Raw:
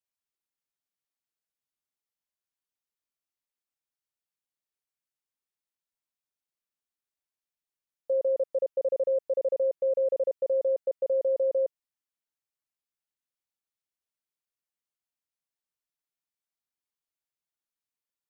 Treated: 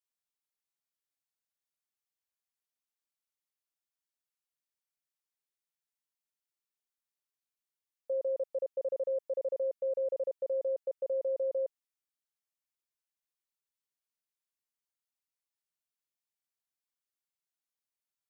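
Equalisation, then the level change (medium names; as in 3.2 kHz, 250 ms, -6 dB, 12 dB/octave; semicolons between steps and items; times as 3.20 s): tone controls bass +4 dB, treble +2 dB; bass shelf 360 Hz -9.5 dB; -3.5 dB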